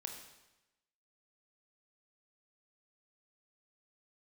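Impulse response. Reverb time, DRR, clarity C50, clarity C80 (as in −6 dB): 1.0 s, 3.0 dB, 5.5 dB, 7.5 dB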